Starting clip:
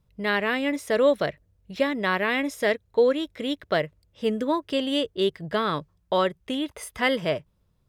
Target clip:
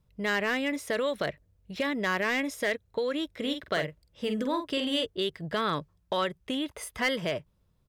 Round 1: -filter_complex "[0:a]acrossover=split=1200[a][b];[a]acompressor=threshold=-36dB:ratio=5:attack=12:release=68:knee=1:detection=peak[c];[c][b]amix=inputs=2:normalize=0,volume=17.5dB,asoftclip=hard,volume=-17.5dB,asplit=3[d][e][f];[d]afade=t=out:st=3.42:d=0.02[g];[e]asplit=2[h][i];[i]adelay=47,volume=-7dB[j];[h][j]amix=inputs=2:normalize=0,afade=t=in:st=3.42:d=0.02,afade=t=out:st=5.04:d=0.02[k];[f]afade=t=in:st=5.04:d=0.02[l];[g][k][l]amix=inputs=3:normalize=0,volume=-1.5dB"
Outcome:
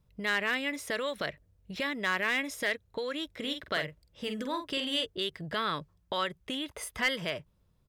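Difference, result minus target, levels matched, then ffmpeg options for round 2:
compressor: peak gain reduction +6.5 dB
-filter_complex "[0:a]acrossover=split=1200[a][b];[a]acompressor=threshold=-28dB:ratio=5:attack=12:release=68:knee=1:detection=peak[c];[c][b]amix=inputs=2:normalize=0,volume=17.5dB,asoftclip=hard,volume=-17.5dB,asplit=3[d][e][f];[d]afade=t=out:st=3.42:d=0.02[g];[e]asplit=2[h][i];[i]adelay=47,volume=-7dB[j];[h][j]amix=inputs=2:normalize=0,afade=t=in:st=3.42:d=0.02,afade=t=out:st=5.04:d=0.02[k];[f]afade=t=in:st=5.04:d=0.02[l];[g][k][l]amix=inputs=3:normalize=0,volume=-1.5dB"

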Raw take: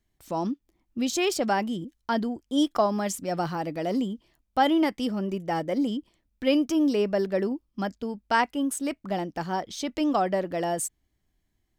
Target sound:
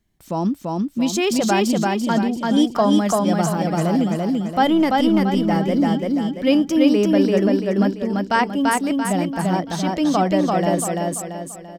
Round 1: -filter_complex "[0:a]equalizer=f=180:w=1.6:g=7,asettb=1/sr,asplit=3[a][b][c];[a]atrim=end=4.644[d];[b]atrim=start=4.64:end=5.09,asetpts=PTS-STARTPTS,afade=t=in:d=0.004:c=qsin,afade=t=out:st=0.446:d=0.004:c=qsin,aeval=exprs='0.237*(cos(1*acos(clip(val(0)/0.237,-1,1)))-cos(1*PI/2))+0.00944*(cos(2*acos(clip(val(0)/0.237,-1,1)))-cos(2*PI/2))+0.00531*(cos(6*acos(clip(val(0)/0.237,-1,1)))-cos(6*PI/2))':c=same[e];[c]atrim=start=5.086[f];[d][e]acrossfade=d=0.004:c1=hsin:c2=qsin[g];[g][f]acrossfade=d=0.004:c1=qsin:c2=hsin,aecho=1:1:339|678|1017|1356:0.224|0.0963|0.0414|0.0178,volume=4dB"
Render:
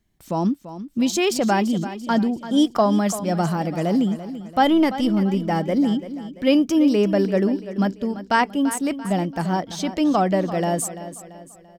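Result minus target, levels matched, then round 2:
echo-to-direct -11 dB
-filter_complex "[0:a]equalizer=f=180:w=1.6:g=7,asettb=1/sr,asplit=3[a][b][c];[a]atrim=end=4.644[d];[b]atrim=start=4.64:end=5.09,asetpts=PTS-STARTPTS,afade=t=in:d=0.004:c=qsin,afade=t=out:st=0.446:d=0.004:c=qsin,aeval=exprs='0.237*(cos(1*acos(clip(val(0)/0.237,-1,1)))-cos(1*PI/2))+0.00944*(cos(2*acos(clip(val(0)/0.237,-1,1)))-cos(2*PI/2))+0.00531*(cos(6*acos(clip(val(0)/0.237,-1,1)))-cos(6*PI/2))':c=same[e];[c]atrim=start=5.086[f];[d][e]acrossfade=d=0.004:c1=hsin:c2=qsin[g];[g][f]acrossfade=d=0.004:c1=qsin:c2=hsin,aecho=1:1:339|678|1017|1356|1695|2034:0.794|0.342|0.147|0.0632|0.0272|0.0117,volume=4dB"

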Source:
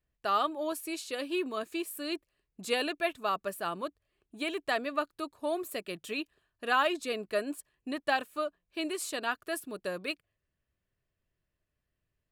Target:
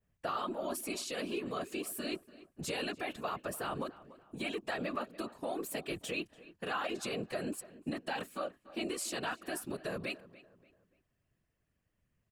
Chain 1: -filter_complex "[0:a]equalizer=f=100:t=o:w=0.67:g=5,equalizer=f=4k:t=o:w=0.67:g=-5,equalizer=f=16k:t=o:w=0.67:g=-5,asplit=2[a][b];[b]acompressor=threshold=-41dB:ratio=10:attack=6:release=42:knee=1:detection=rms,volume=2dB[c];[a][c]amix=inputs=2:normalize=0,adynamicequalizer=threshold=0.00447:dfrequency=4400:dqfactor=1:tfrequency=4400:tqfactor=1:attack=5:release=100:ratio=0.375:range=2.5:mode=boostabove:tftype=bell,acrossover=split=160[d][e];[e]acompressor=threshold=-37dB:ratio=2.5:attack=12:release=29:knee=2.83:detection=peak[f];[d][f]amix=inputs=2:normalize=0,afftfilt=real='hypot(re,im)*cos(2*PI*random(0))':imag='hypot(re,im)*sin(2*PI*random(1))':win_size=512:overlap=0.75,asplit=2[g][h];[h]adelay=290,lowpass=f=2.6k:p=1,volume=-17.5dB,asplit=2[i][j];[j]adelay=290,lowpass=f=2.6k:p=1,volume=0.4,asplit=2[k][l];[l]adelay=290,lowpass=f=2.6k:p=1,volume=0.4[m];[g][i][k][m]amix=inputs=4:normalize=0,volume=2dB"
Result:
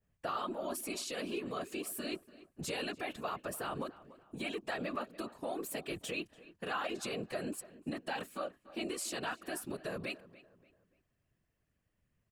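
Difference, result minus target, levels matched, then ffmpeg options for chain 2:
compressor: peak gain reduction +8.5 dB
-filter_complex "[0:a]equalizer=f=100:t=o:w=0.67:g=5,equalizer=f=4k:t=o:w=0.67:g=-5,equalizer=f=16k:t=o:w=0.67:g=-5,asplit=2[a][b];[b]acompressor=threshold=-31.5dB:ratio=10:attack=6:release=42:knee=1:detection=rms,volume=2dB[c];[a][c]amix=inputs=2:normalize=0,adynamicequalizer=threshold=0.00447:dfrequency=4400:dqfactor=1:tfrequency=4400:tqfactor=1:attack=5:release=100:ratio=0.375:range=2.5:mode=boostabove:tftype=bell,acrossover=split=160[d][e];[e]acompressor=threshold=-37dB:ratio=2.5:attack=12:release=29:knee=2.83:detection=peak[f];[d][f]amix=inputs=2:normalize=0,afftfilt=real='hypot(re,im)*cos(2*PI*random(0))':imag='hypot(re,im)*sin(2*PI*random(1))':win_size=512:overlap=0.75,asplit=2[g][h];[h]adelay=290,lowpass=f=2.6k:p=1,volume=-17.5dB,asplit=2[i][j];[j]adelay=290,lowpass=f=2.6k:p=1,volume=0.4,asplit=2[k][l];[l]adelay=290,lowpass=f=2.6k:p=1,volume=0.4[m];[g][i][k][m]amix=inputs=4:normalize=0,volume=2dB"

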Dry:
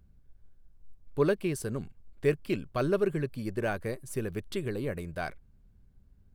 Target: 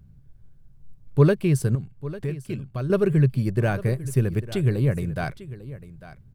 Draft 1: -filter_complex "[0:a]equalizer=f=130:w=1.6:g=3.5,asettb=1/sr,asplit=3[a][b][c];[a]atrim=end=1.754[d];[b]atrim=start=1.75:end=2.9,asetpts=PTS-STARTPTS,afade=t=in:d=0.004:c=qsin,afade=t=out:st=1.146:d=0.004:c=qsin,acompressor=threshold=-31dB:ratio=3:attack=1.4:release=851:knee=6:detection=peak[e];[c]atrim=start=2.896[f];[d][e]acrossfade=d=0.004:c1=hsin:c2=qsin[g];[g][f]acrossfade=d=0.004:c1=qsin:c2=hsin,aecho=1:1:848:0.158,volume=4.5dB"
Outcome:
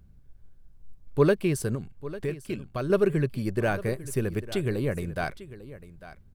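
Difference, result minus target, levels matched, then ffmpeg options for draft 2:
125 Hz band -4.5 dB
-filter_complex "[0:a]equalizer=f=130:w=1.6:g=15,asettb=1/sr,asplit=3[a][b][c];[a]atrim=end=1.754[d];[b]atrim=start=1.75:end=2.9,asetpts=PTS-STARTPTS,afade=t=in:d=0.004:c=qsin,afade=t=out:st=1.146:d=0.004:c=qsin,acompressor=threshold=-31dB:ratio=3:attack=1.4:release=851:knee=6:detection=peak[e];[c]atrim=start=2.896[f];[d][e]acrossfade=d=0.004:c1=hsin:c2=qsin[g];[g][f]acrossfade=d=0.004:c1=qsin:c2=hsin,aecho=1:1:848:0.158,volume=4.5dB"

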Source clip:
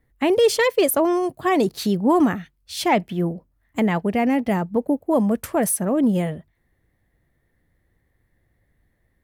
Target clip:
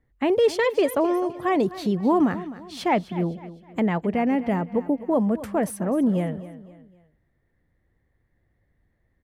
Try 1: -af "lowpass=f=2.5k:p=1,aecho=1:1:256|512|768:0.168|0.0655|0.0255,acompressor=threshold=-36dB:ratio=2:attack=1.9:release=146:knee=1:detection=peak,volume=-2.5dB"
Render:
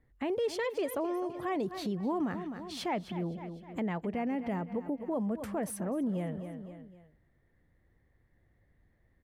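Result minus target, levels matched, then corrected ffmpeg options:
compressor: peak gain reduction +13 dB
-af "lowpass=f=2.5k:p=1,aecho=1:1:256|512|768:0.168|0.0655|0.0255,volume=-2.5dB"

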